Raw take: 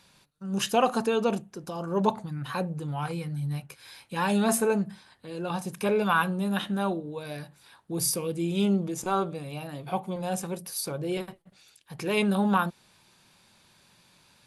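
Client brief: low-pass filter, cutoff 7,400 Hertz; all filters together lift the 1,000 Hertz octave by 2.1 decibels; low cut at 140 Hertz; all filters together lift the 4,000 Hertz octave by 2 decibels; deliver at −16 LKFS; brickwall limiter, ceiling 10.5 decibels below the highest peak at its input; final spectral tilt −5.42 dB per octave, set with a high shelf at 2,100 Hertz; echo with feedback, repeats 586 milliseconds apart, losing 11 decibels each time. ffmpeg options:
ffmpeg -i in.wav -af "highpass=140,lowpass=7400,equalizer=frequency=1000:width_type=o:gain=3.5,highshelf=frequency=2100:gain=-5.5,equalizer=frequency=4000:width_type=o:gain=8,alimiter=limit=-18.5dB:level=0:latency=1,aecho=1:1:586|1172|1758:0.282|0.0789|0.0221,volume=15dB" out.wav

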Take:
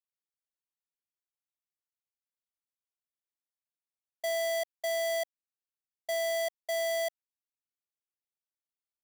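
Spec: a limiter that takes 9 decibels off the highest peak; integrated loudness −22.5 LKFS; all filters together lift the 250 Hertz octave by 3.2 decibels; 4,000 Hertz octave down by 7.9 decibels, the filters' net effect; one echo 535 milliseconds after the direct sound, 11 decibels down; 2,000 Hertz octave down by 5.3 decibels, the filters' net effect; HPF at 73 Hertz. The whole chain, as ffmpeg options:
ffmpeg -i in.wav -af "highpass=73,equalizer=frequency=250:width_type=o:gain=5,equalizer=frequency=2000:width_type=o:gain=-3.5,equalizer=frequency=4000:width_type=o:gain=-9,alimiter=level_in=14dB:limit=-24dB:level=0:latency=1,volume=-14dB,aecho=1:1:535:0.282,volume=20.5dB" out.wav

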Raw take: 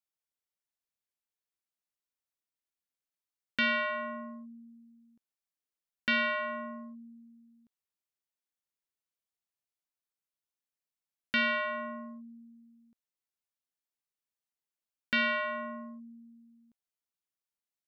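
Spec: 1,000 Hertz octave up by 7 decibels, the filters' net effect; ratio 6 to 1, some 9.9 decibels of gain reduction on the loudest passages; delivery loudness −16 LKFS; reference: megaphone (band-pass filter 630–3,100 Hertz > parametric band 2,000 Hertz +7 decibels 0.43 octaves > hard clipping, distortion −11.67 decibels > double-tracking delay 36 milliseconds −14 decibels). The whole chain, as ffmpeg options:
ffmpeg -i in.wav -filter_complex "[0:a]equalizer=frequency=1000:width_type=o:gain=8,acompressor=threshold=-34dB:ratio=6,highpass=630,lowpass=3100,equalizer=frequency=2000:width_type=o:width=0.43:gain=7,asoftclip=type=hard:threshold=-33dB,asplit=2[link_01][link_02];[link_02]adelay=36,volume=-14dB[link_03];[link_01][link_03]amix=inputs=2:normalize=0,volume=21dB" out.wav

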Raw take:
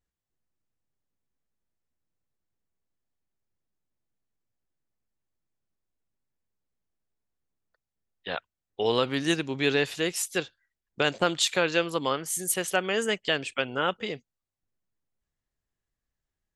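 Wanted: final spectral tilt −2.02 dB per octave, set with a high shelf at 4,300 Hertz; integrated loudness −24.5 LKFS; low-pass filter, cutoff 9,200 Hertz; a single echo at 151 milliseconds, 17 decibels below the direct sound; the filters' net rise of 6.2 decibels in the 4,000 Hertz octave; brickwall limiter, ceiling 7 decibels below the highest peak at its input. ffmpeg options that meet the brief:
ffmpeg -i in.wav -af "lowpass=9200,equalizer=frequency=4000:width_type=o:gain=5.5,highshelf=frequency=4300:gain=5.5,alimiter=limit=-11.5dB:level=0:latency=1,aecho=1:1:151:0.141,volume=1.5dB" out.wav

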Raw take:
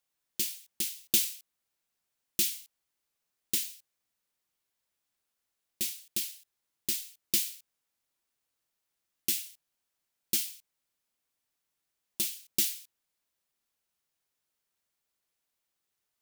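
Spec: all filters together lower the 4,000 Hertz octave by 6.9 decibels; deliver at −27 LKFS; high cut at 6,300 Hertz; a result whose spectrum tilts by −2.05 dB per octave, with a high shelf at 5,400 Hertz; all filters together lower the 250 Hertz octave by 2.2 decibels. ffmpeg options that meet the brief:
ffmpeg -i in.wav -af "lowpass=6300,equalizer=frequency=250:width_type=o:gain=-3,equalizer=frequency=4000:width_type=o:gain=-6,highshelf=frequency=5400:gain=-4.5,volume=16dB" out.wav

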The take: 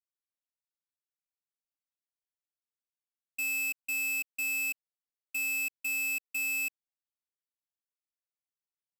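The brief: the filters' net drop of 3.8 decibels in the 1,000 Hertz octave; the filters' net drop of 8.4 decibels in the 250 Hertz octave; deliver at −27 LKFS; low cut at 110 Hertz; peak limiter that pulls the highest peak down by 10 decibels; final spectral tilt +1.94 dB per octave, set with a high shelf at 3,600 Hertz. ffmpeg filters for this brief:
ffmpeg -i in.wav -af "highpass=110,equalizer=frequency=250:width_type=o:gain=-8.5,equalizer=frequency=1000:width_type=o:gain=-4,highshelf=frequency=3600:gain=-6.5,volume=16.5dB,alimiter=level_in=2.5dB:limit=-24dB:level=0:latency=1,volume=-2.5dB" out.wav

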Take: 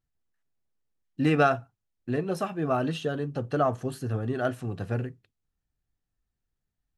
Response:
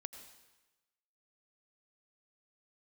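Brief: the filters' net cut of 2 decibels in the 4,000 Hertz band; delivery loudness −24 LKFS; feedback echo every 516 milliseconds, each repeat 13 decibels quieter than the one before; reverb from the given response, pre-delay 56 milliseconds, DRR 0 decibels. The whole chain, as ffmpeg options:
-filter_complex "[0:a]equalizer=frequency=4000:width_type=o:gain=-3,aecho=1:1:516|1032|1548:0.224|0.0493|0.0108,asplit=2[link_01][link_02];[1:a]atrim=start_sample=2205,adelay=56[link_03];[link_02][link_03]afir=irnorm=-1:irlink=0,volume=3.5dB[link_04];[link_01][link_04]amix=inputs=2:normalize=0,volume=1.5dB"

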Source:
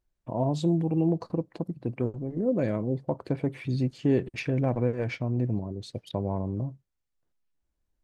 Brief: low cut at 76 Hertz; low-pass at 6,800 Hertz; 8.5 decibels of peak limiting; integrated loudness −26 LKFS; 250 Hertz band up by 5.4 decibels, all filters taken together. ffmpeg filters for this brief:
ffmpeg -i in.wav -af "highpass=76,lowpass=6800,equalizer=frequency=250:width_type=o:gain=7,volume=3dB,alimiter=limit=-15dB:level=0:latency=1" out.wav

